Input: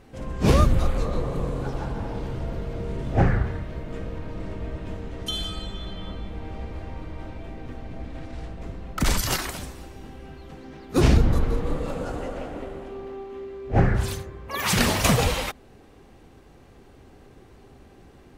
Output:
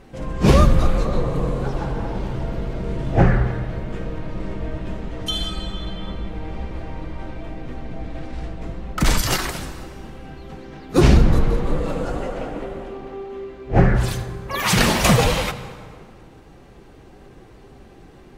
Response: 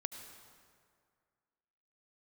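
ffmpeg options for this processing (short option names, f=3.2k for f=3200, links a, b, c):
-filter_complex "[0:a]flanger=delay=5.1:depth=1.5:regen=-50:speed=1.8:shape=triangular,asplit=2[a][b];[1:a]atrim=start_sample=2205,highshelf=f=10k:g=-11[c];[b][c]afir=irnorm=-1:irlink=0,volume=0.5dB[d];[a][d]amix=inputs=2:normalize=0,volume=3.5dB"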